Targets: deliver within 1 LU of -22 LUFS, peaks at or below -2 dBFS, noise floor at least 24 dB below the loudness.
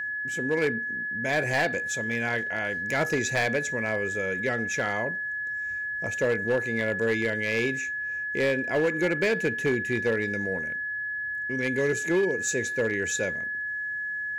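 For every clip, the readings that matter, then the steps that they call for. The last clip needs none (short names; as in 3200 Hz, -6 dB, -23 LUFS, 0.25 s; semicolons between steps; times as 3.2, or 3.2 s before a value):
clipped 0.8%; flat tops at -18.5 dBFS; steady tone 1700 Hz; tone level -29 dBFS; loudness -27.0 LUFS; peak -18.5 dBFS; loudness target -22.0 LUFS
-> clip repair -18.5 dBFS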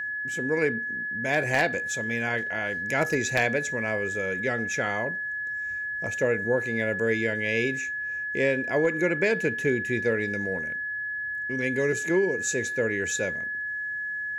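clipped 0.0%; steady tone 1700 Hz; tone level -29 dBFS
-> notch 1700 Hz, Q 30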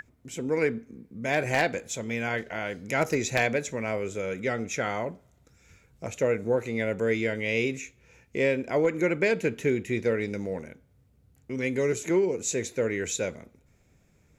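steady tone none; loudness -28.0 LUFS; peak -9.5 dBFS; loudness target -22.0 LUFS
-> gain +6 dB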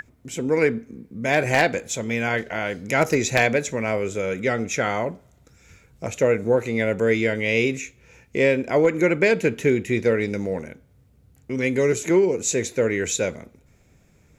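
loudness -22.0 LUFS; peak -3.5 dBFS; noise floor -57 dBFS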